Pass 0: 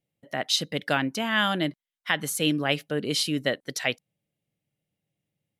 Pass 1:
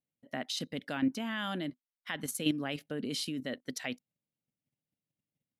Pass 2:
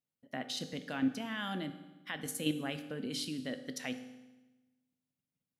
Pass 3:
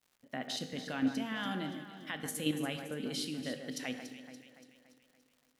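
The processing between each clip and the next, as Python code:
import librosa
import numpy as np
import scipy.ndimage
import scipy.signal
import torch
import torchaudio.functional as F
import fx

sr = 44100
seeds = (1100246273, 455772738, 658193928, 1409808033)

y1 = fx.peak_eq(x, sr, hz=250.0, db=11.5, octaves=0.32)
y1 = fx.level_steps(y1, sr, step_db=10)
y1 = F.gain(torch.from_numpy(y1), -5.5).numpy()
y2 = fx.rev_fdn(y1, sr, rt60_s=1.1, lf_ratio=1.25, hf_ratio=0.95, size_ms=12.0, drr_db=8.0)
y2 = F.gain(torch.from_numpy(y2), -3.0).numpy()
y3 = fx.dmg_crackle(y2, sr, seeds[0], per_s=160.0, level_db=-55.0)
y3 = fx.echo_alternate(y3, sr, ms=143, hz=2200.0, feedback_pct=71, wet_db=-8.0)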